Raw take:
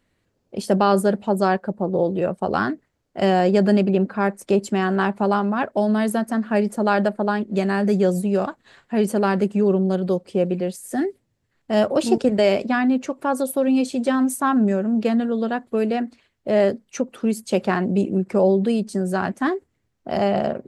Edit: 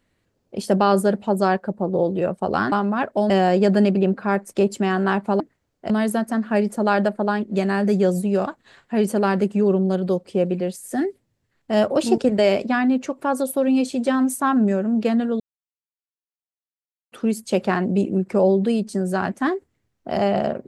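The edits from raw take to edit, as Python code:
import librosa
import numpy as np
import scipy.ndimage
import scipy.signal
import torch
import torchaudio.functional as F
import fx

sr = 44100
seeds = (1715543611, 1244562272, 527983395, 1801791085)

y = fx.edit(x, sr, fx.swap(start_s=2.72, length_s=0.5, other_s=5.32, other_length_s=0.58),
    fx.silence(start_s=15.4, length_s=1.72), tone=tone)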